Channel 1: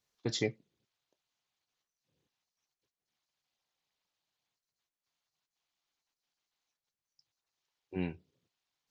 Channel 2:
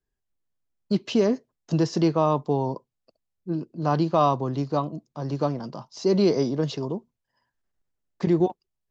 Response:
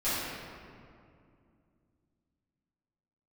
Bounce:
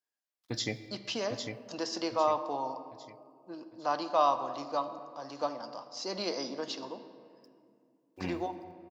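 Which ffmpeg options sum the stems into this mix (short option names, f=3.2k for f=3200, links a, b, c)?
-filter_complex "[0:a]acrusher=bits=11:mix=0:aa=0.000001,adelay=250,volume=0dB,asplit=3[a][b][c];[b]volume=-22dB[d];[c]volume=-5.5dB[e];[1:a]highpass=500,volume=-4dB,asplit=2[f][g];[g]volume=-19dB[h];[2:a]atrim=start_sample=2205[i];[d][h]amix=inputs=2:normalize=0[j];[j][i]afir=irnorm=-1:irlink=0[k];[e]aecho=0:1:803|1606|2409|3212|4015|4818:1|0.41|0.168|0.0689|0.0283|0.0116[l];[a][f][k][l]amix=inputs=4:normalize=0,equalizer=f=160:t=o:w=0.33:g=-9,equalizer=f=400:t=o:w=0.33:g=-11,equalizer=f=5k:t=o:w=0.33:g=4"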